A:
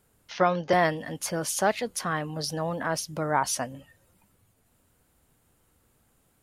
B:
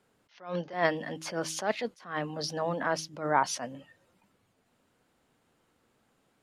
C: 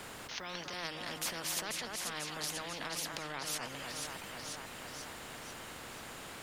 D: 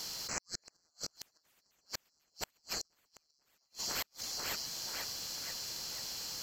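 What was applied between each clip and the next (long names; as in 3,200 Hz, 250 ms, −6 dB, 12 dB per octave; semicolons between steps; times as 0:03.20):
three-way crossover with the lows and the highs turned down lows −15 dB, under 150 Hz, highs −16 dB, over 6,200 Hz; hum removal 159.6 Hz, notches 2; level that may rise only so fast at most 150 dB per second
downward compressor 3 to 1, threshold −43 dBFS, peak gain reduction 17.5 dB; delay that swaps between a low-pass and a high-pass 245 ms, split 1,800 Hz, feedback 66%, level −9.5 dB; every bin compressed towards the loudest bin 4 to 1; level +8 dB
neighbouring bands swapped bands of 4,000 Hz; gate with flip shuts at −29 dBFS, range −41 dB; level +5 dB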